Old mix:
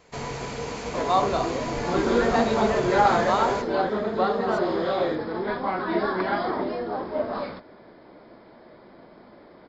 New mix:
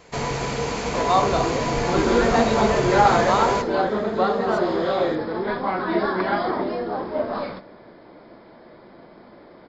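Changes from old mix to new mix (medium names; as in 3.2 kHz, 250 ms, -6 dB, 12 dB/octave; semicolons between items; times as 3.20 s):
first sound +4.0 dB; reverb: on, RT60 1.1 s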